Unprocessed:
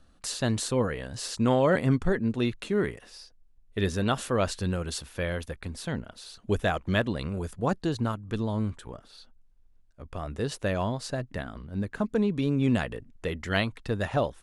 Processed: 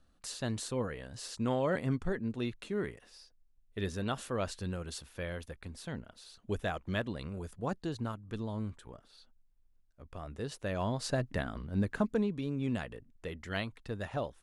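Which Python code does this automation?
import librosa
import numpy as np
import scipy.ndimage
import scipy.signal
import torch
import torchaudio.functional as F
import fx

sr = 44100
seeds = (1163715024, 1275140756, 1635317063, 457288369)

y = fx.gain(x, sr, db=fx.line((10.65, -8.5), (11.08, 0.0), (11.93, 0.0), (12.41, -9.5)))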